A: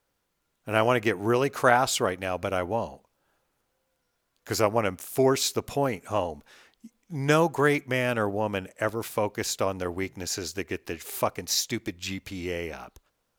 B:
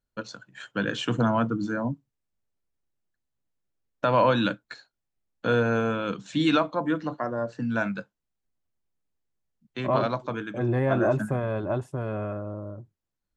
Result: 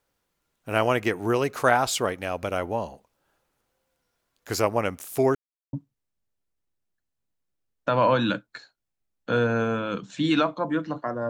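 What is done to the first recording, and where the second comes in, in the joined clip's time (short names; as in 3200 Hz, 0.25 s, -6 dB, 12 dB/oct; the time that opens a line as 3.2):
A
5.35–5.73 mute
5.73 switch to B from 1.89 s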